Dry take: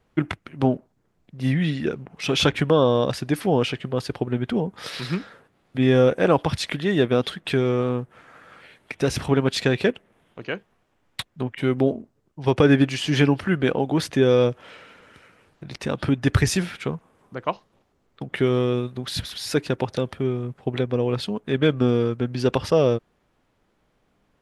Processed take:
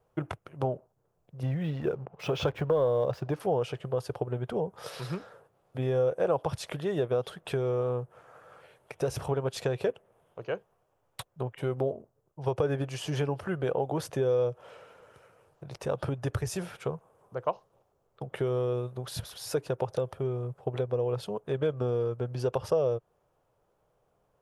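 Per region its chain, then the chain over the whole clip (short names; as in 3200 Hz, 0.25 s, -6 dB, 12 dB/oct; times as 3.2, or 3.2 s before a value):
1.43–3.4 air absorption 170 m + sample leveller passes 1
whole clip: ten-band EQ 125 Hz +7 dB, 250 Hz -12 dB, 500 Hz +6 dB, 2000 Hz -12 dB, 4000 Hz -10 dB, 8000 Hz -4 dB; compressor 3:1, threshold -22 dBFS; low shelf 300 Hz -9.5 dB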